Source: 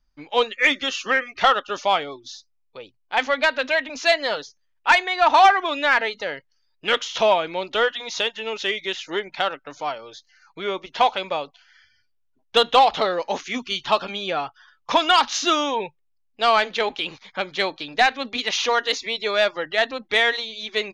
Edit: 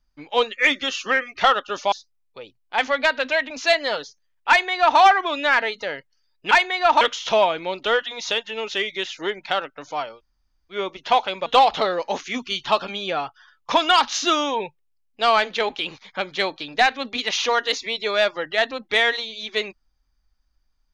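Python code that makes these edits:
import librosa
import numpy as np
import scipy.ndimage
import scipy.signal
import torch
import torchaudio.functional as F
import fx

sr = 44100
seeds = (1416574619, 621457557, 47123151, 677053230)

y = fx.edit(x, sr, fx.cut(start_s=1.92, length_s=0.39),
    fx.duplicate(start_s=4.88, length_s=0.5, to_s=6.9),
    fx.room_tone_fill(start_s=10.05, length_s=0.58, crossfade_s=0.1),
    fx.cut(start_s=11.35, length_s=1.31), tone=tone)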